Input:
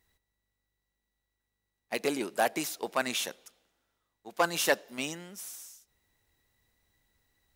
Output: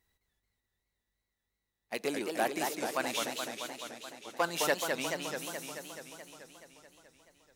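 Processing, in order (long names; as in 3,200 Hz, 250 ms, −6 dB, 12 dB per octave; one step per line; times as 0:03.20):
feedback echo with a swinging delay time 215 ms, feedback 72%, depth 211 cents, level −4.5 dB
level −4 dB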